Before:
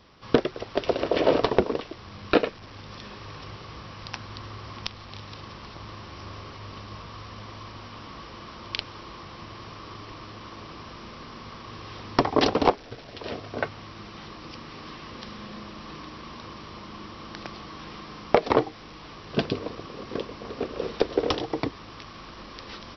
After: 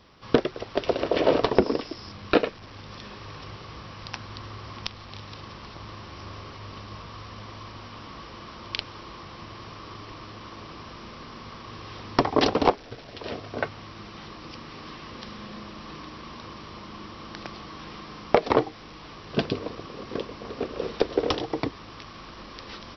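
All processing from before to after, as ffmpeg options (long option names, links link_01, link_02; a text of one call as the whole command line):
ffmpeg -i in.wav -filter_complex "[0:a]asettb=1/sr,asplit=3[link_01][link_02][link_03];[link_01]atrim=end=1.554[link_04];[link_02]atrim=start=1.55:end=2.12,asetpts=PTS-STARTPTS,afade=type=in:duration=0.004:curve=qsin,afade=type=out:start_time=0.566:duration=0.004:curve=qsin,acrossover=split=3200[link_05][link_06];[link_06]acompressor=threshold=-57dB:ratio=4:attack=1:release=60[link_07];[link_05][link_07]amix=inputs=2:normalize=0,lowpass=frequency=5200:width_type=q:width=10,equalizer=frequency=270:width_type=o:width=0.68:gain=5.5[link_08];[link_03]atrim=start=2.116[link_09];[link_04][link_08]acrossfade=duration=0.004:curve1=hsin:curve2=qsin[link_10];[link_10][link_09]acrossfade=duration=0.004:curve1=qsin:curve2=hsin" out.wav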